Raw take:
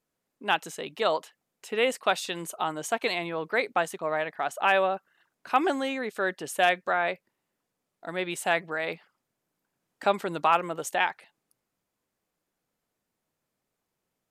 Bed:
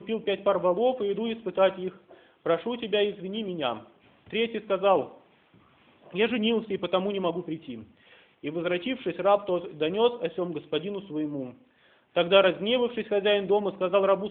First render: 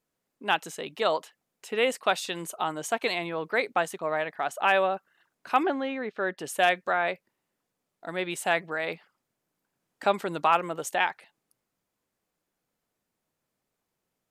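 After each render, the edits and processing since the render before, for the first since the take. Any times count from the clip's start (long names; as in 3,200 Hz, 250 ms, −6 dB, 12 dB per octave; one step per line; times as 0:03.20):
0:05.63–0:06.38: high-frequency loss of the air 270 metres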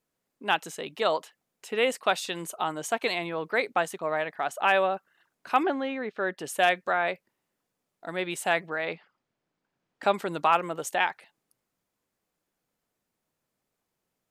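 0:08.69–0:10.03: low-pass filter 4,700 Hz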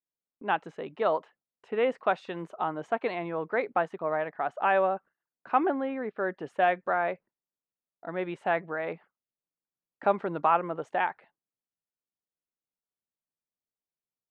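low-pass filter 1,500 Hz 12 dB per octave
noise gate with hold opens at −48 dBFS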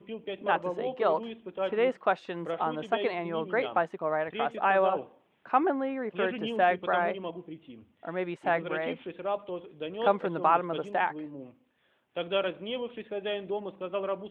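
mix in bed −9.5 dB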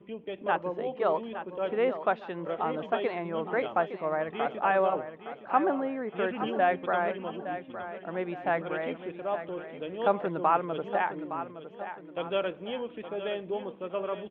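high-frequency loss of the air 220 metres
repeating echo 864 ms, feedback 42%, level −11 dB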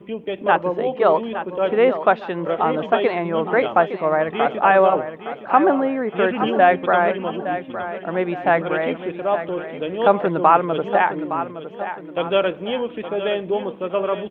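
level +11 dB
brickwall limiter −2 dBFS, peak gain reduction 2 dB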